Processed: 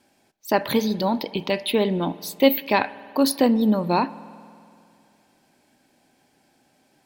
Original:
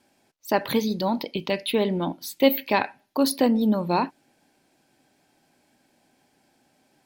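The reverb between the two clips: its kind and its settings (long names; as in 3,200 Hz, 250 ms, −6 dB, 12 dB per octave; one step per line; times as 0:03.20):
spring reverb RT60 2.4 s, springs 47 ms, chirp 35 ms, DRR 17.5 dB
level +2 dB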